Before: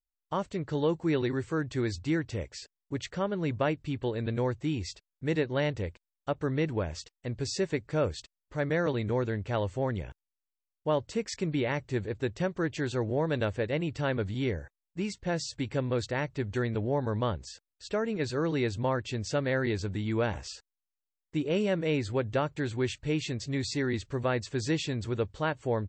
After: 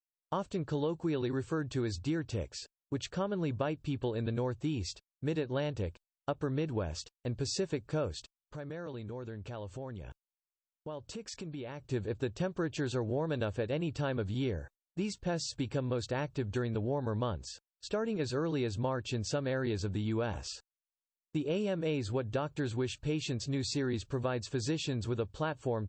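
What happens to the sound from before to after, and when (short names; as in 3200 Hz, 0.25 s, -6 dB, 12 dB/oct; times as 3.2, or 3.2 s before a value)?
8.18–11.86 compressor 4:1, threshold -40 dBFS
whole clip: gate -51 dBFS, range -23 dB; bell 2000 Hz -13 dB 0.23 oct; compressor, threshold -29 dBFS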